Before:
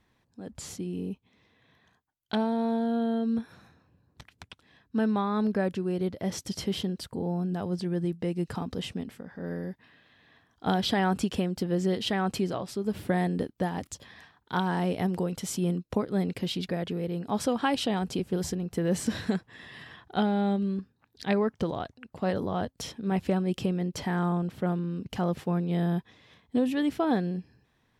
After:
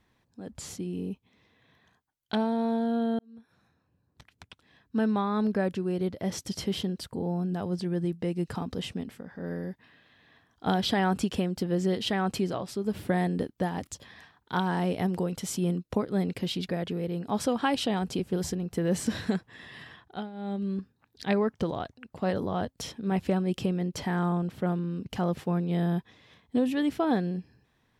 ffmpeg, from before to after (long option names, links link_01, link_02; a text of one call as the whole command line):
ffmpeg -i in.wav -filter_complex "[0:a]asplit=4[link_01][link_02][link_03][link_04];[link_01]atrim=end=3.19,asetpts=PTS-STARTPTS,afade=type=out:start_time=3.186:duration=0.004:curve=hsin[link_05];[link_02]atrim=start=3.19:end=20.3,asetpts=PTS-STARTPTS,afade=type=in:duration=1.78,afade=type=out:start_time=16.66:duration=0.45:silence=0.141254[link_06];[link_03]atrim=start=20.3:end=20.33,asetpts=PTS-STARTPTS,volume=-17dB[link_07];[link_04]atrim=start=20.33,asetpts=PTS-STARTPTS,afade=type=in:duration=0.45:silence=0.141254[link_08];[link_05][link_06][link_07][link_08]concat=n=4:v=0:a=1" out.wav